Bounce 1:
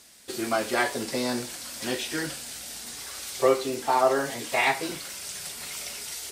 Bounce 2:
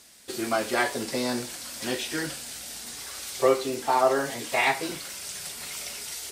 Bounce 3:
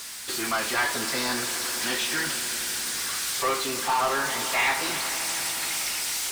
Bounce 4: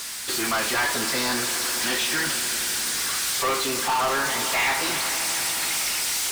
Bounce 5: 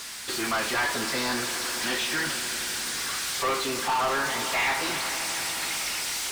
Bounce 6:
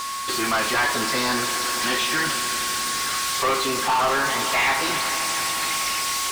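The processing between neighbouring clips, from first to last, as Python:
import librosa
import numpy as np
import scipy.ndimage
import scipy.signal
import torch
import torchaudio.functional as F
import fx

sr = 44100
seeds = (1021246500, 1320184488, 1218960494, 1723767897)

y1 = x
y2 = fx.low_shelf_res(y1, sr, hz=790.0, db=-8.0, q=1.5)
y2 = fx.power_curve(y2, sr, exponent=0.5)
y2 = fx.echo_swell(y2, sr, ms=86, loudest=5, wet_db=-17.5)
y2 = y2 * 10.0 ** (-5.0 / 20.0)
y3 = fx.leveller(y2, sr, passes=2)
y3 = y3 * 10.0 ** (-3.0 / 20.0)
y4 = fx.high_shelf(y3, sr, hz=6900.0, db=-7.0)
y4 = y4 * 10.0 ** (-2.0 / 20.0)
y5 = y4 + 10.0 ** (-33.0 / 20.0) * np.sin(2.0 * np.pi * 1100.0 * np.arange(len(y4)) / sr)
y5 = y5 * 10.0 ** (4.5 / 20.0)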